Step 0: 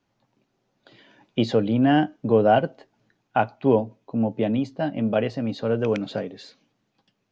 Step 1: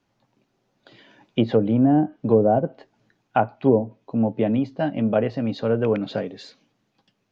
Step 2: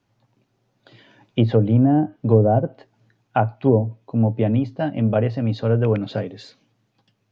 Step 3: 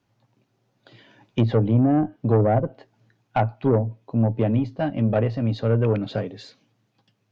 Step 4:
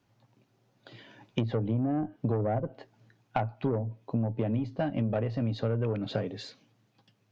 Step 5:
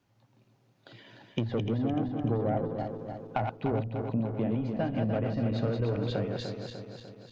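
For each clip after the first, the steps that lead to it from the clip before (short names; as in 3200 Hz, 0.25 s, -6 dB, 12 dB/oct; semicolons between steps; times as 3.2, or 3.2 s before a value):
treble ducked by the level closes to 610 Hz, closed at -14 dBFS; gain +2 dB
bell 110 Hz +11.5 dB 0.44 oct
tube stage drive 11 dB, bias 0.35
compressor 6:1, threshold -26 dBFS, peak gain reduction 12 dB
regenerating reverse delay 0.149 s, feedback 73%, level -5 dB; gain -1.5 dB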